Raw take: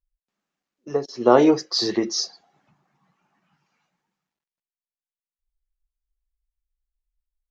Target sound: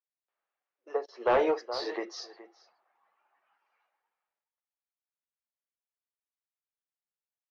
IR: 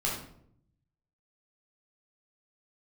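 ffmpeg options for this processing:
-filter_complex "[0:a]highpass=f=490:w=0.5412,highpass=f=490:w=1.3066,asplit=2[a][b];[b]adelay=419.8,volume=-16dB,highshelf=f=4k:g=-9.45[c];[a][c]amix=inputs=2:normalize=0,volume=17dB,asoftclip=hard,volume=-17dB,lowpass=2.3k,volume=-2.5dB"

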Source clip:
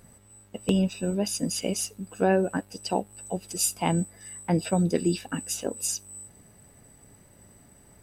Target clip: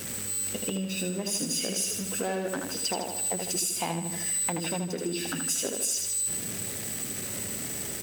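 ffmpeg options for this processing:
-filter_complex "[0:a]aeval=exprs='val(0)+0.5*0.0211*sgn(val(0))':c=same,acrossover=split=610|1300[a][b][c];[b]acrusher=bits=4:mix=0:aa=0.5[d];[a][d][c]amix=inputs=3:normalize=0,alimiter=limit=-21dB:level=0:latency=1:release=300,aecho=1:1:78|156|234|312|390|468|546:0.562|0.292|0.152|0.0791|0.0411|0.0214|0.0111,acompressor=threshold=-29dB:ratio=6,highpass=f=310:p=1,volume=5dB"

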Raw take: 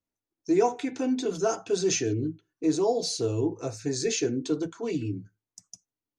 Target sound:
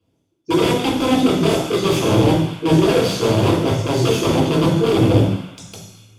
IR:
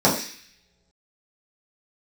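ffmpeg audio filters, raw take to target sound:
-filter_complex "[0:a]areverse,acompressor=threshold=-40dB:ratio=4,areverse,aeval=exprs='(mod(56.2*val(0)+1,2)-1)/56.2':c=same[a];[1:a]atrim=start_sample=2205,asetrate=26460,aresample=44100[b];[a][b]afir=irnorm=-1:irlink=0,volume=-1dB"

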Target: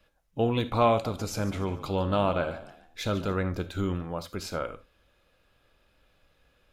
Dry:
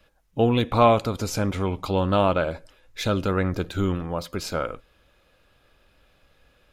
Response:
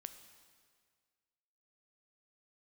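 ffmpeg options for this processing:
-filter_complex "[0:a]asettb=1/sr,asplit=3[a][b][c];[a]atrim=end=0.904[d];[b]atrim=start=0.9:end=3.34,asetpts=PTS-STARTPTS,afade=t=in:d=0.004:c=qsin,afade=t=out:st=2.436:d=0.004:c=qsin,asplit=4[e][f][g][h];[f]adelay=144,afreqshift=56,volume=-15dB[i];[g]adelay=288,afreqshift=112,volume=-24.1dB[j];[h]adelay=432,afreqshift=168,volume=-33.2dB[k];[e][i][j][k]amix=inputs=4:normalize=0,atrim=end_sample=107604[l];[c]atrim=start=3.336[m];[d][l]acrossfade=d=0.004:c1=hsin:c2=qsin[n];[n][m]acrossfade=d=0.004:c1=qsin:c2=hsin[o];[1:a]atrim=start_sample=2205,atrim=end_sample=3969[p];[o][p]afir=irnorm=-1:irlink=0"

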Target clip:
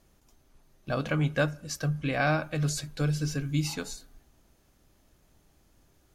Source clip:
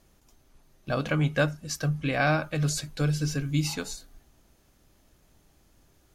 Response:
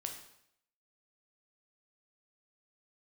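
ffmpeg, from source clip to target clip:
-filter_complex "[0:a]asplit=2[a][b];[1:a]atrim=start_sample=2205,asetrate=36603,aresample=44100,lowpass=2.4k[c];[b][c]afir=irnorm=-1:irlink=0,volume=-17.5dB[d];[a][d]amix=inputs=2:normalize=0,volume=-2.5dB"

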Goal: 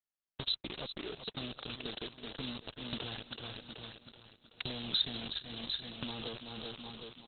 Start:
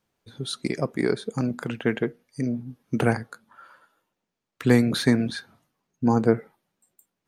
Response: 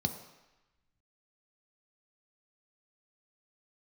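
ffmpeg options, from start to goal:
-filter_complex "[0:a]alimiter=limit=-15dB:level=0:latency=1:release=13,aeval=exprs='val(0)+0.00562*(sin(2*PI*50*n/s)+sin(2*PI*2*50*n/s)/2+sin(2*PI*3*50*n/s)/3+sin(2*PI*4*50*n/s)/4+sin(2*PI*5*50*n/s)/5)':c=same,acrusher=bits=4:mix=0:aa=0.000001,asettb=1/sr,asplit=3[a][b][c];[a]atrim=end=0.814[d];[b]atrim=start=0.81:end=1.26,asetpts=PTS-STARTPTS,afade=t=in:d=0.004:c=qsin,afade=t=out:st=0.446:d=0.004:c=qsin,acrossover=split=3100[e][f];[f]acompressor=threshold=-46dB:ratio=4:attack=1:release=60[g];[e][g]amix=inputs=2:normalize=0[h];[c]atrim=start=1.256[i];[d][h]acrossfade=d=0.004:c1=hsin:c2=qsin[j];[j][i]acrossfade=d=0.004:c1=qsin:c2=hsin,asettb=1/sr,asplit=3[k][l][m];[k]atrim=end=2.994[n];[l]atrim=start=2.99:end=4.66,asetpts=PTS-STARTPTS,afade=t=in:d=0.004:c=qsin,afade=t=out:st=1.666:d=0.004:c=qsin,bandreject=f=6.3k:w=7.2[o];[m]atrim=start=4.656[p];[n][o]acrossfade=d=0.004:c1=hsin:c2=qsin[q];[q][p]acrossfade=d=0.004:c1=qsin:c2=hsin,asoftclip=type=tanh:threshold=-21.5dB,equalizer=f=200:w=0.54:g=-5.5,asplit=2[r][s];[s]aecho=0:1:378|756|1134|1512|1890:0.237|0.109|0.0502|0.0231|0.0106[t];[r][t]amix=inputs=2:normalize=0,acompressor=threshold=-41dB:ratio=16,aexciter=amount=13.8:drive=2.8:freq=3.1k,highshelf=f=7.3k:g=-12,volume=2.5dB" -ar 48000 -c:a libopus -b:a 8k

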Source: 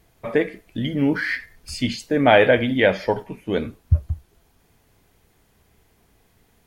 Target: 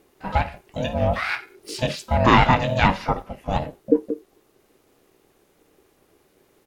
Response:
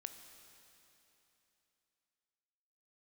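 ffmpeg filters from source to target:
-filter_complex "[0:a]asplit=3[a][b][c];[b]asetrate=29433,aresample=44100,atempo=1.49831,volume=-9dB[d];[c]asetrate=88200,aresample=44100,atempo=0.5,volume=-16dB[e];[a][d][e]amix=inputs=3:normalize=0,aeval=exprs='val(0)*sin(2*PI*380*n/s)':c=same,volume=1.5dB"

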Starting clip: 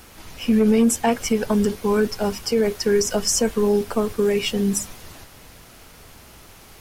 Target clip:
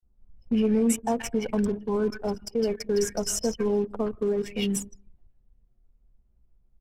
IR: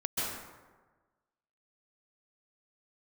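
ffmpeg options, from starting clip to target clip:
-filter_complex "[0:a]acrossover=split=1400|4800[a][b][c];[a]adelay=30[d];[b]adelay=160[e];[d][e][c]amix=inputs=3:normalize=0,asplit=2[f][g];[1:a]atrim=start_sample=2205,afade=t=out:st=0.41:d=0.01,atrim=end_sample=18522[h];[g][h]afir=irnorm=-1:irlink=0,volume=-24.5dB[i];[f][i]amix=inputs=2:normalize=0,anlmdn=100,volume=-6.5dB"

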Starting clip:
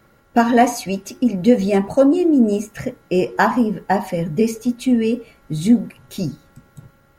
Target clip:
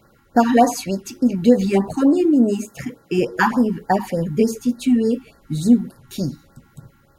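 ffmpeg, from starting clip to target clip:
-filter_complex "[0:a]asettb=1/sr,asplit=3[a][b][c];[a]atrim=end=2.254[d];[b]atrim=start=2.25:end=3.19,asetpts=PTS-STARTPTS,afade=t=in:d=0.004:c=qsin,afade=t=out:st=0.936:d=0.004:c=qsin,highpass=f=120:p=1[e];[c]atrim=start=3.186[f];[d][e]acrossfade=d=0.004:c1=hsin:c2=qsin[g];[g][f]acrossfade=d=0.004:c1=qsin:c2=hsin,afftfilt=real='re*(1-between(b*sr/1024,500*pow(2900/500,0.5+0.5*sin(2*PI*3.4*pts/sr))/1.41,500*pow(2900/500,0.5+0.5*sin(2*PI*3.4*pts/sr))*1.41))':imag='im*(1-between(b*sr/1024,500*pow(2900/500,0.5+0.5*sin(2*PI*3.4*pts/sr))/1.41,500*pow(2900/500,0.5+0.5*sin(2*PI*3.4*pts/sr))*1.41))':win_size=1024:overlap=0.75"

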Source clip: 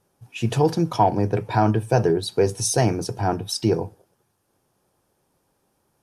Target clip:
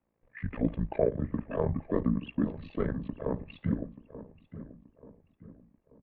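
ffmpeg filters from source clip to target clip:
-filter_complex "[0:a]highpass=f=160:t=q:w=0.5412,highpass=f=160:t=q:w=1.307,lowpass=f=3.4k:t=q:w=0.5176,lowpass=f=3.4k:t=q:w=0.7071,lowpass=f=3.4k:t=q:w=1.932,afreqshift=-96,tremolo=f=75:d=0.857,asplit=2[a][b];[b]adelay=885,lowpass=f=2.3k:p=1,volume=-14dB,asplit=2[c][d];[d]adelay=885,lowpass=f=2.3k:p=1,volume=0.44,asplit=2[e][f];[f]adelay=885,lowpass=f=2.3k:p=1,volume=0.44,asplit=2[g][h];[h]adelay=885,lowpass=f=2.3k:p=1,volume=0.44[i];[c][e][g][i]amix=inputs=4:normalize=0[j];[a][j]amix=inputs=2:normalize=0,asetrate=32097,aresample=44100,atempo=1.37395,volume=-5dB"

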